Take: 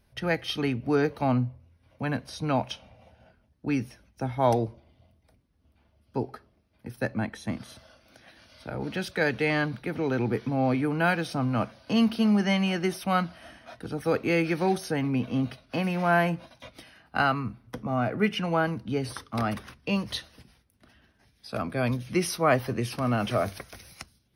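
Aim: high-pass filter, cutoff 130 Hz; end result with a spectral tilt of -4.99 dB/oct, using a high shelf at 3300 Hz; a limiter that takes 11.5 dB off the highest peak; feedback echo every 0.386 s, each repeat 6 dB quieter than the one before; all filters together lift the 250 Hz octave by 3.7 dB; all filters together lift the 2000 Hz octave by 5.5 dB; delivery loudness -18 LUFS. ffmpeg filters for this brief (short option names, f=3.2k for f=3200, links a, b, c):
-af "highpass=130,equalizer=f=250:t=o:g=5,equalizer=f=2k:t=o:g=5,highshelf=f=3.3k:g=7,alimiter=limit=-19dB:level=0:latency=1,aecho=1:1:386|772|1158|1544|1930|2316:0.501|0.251|0.125|0.0626|0.0313|0.0157,volume=10.5dB"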